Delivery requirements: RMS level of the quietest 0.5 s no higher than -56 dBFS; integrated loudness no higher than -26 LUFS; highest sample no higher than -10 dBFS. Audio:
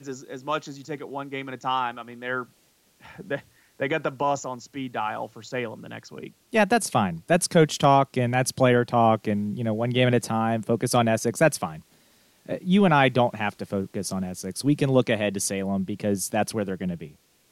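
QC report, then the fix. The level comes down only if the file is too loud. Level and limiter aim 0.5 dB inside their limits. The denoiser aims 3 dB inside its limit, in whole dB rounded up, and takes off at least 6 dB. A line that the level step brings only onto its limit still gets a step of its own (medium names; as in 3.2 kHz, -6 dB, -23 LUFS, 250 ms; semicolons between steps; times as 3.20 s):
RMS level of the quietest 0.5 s -62 dBFS: pass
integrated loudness -24.5 LUFS: fail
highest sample -5.5 dBFS: fail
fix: trim -2 dB; peak limiter -10.5 dBFS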